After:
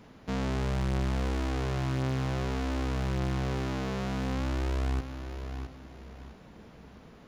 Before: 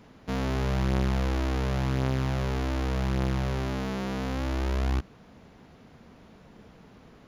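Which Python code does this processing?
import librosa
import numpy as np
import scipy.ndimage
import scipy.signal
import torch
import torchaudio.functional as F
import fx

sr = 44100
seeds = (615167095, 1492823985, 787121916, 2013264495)

p1 = x + fx.echo_feedback(x, sr, ms=662, feedback_pct=32, wet_db=-11.0, dry=0)
y = 10.0 ** (-24.0 / 20.0) * np.tanh(p1 / 10.0 ** (-24.0 / 20.0))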